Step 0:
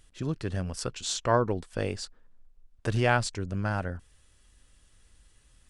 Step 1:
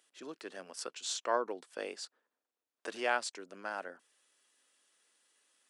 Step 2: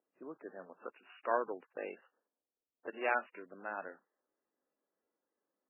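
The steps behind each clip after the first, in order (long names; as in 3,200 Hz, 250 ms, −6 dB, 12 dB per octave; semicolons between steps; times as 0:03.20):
Bessel high-pass filter 450 Hz, order 6; level −5.5 dB
low-pass that shuts in the quiet parts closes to 590 Hz, open at −29.5 dBFS; level −1 dB; MP3 8 kbit/s 11,025 Hz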